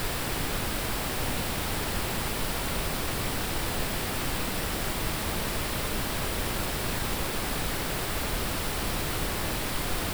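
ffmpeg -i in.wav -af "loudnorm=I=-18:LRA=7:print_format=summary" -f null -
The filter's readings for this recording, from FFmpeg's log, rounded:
Input Integrated:    -29.8 LUFS
Input True Peak:     -15.6 dBTP
Input LRA:             0.1 LU
Input Threshold:     -39.8 LUFS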